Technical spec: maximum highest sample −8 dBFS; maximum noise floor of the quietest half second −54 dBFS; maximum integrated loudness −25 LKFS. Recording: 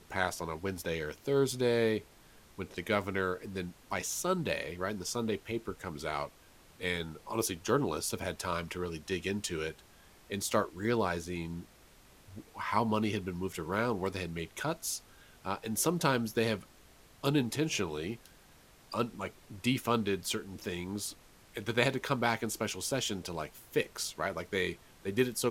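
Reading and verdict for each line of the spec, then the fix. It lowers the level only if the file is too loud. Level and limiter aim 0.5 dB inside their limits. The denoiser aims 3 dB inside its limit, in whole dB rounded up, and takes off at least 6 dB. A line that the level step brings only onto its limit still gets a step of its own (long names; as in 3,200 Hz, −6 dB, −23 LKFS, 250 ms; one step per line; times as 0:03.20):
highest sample −10.0 dBFS: in spec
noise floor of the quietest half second −59 dBFS: in spec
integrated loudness −34.0 LKFS: in spec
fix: no processing needed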